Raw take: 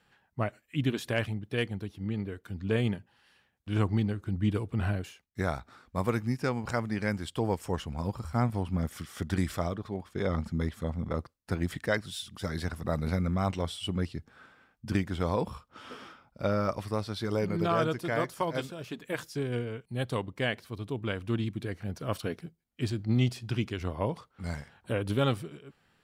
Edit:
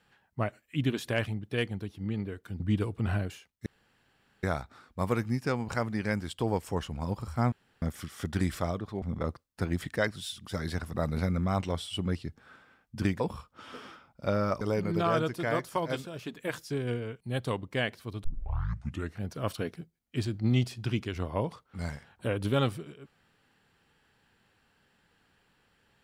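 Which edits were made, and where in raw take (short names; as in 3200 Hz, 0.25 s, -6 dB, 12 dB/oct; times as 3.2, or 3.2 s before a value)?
2.6–4.34 cut
5.4 insert room tone 0.77 s
8.49–8.79 room tone
9.99–10.92 cut
15.1–15.37 cut
16.78–17.26 cut
20.89 tape start 0.93 s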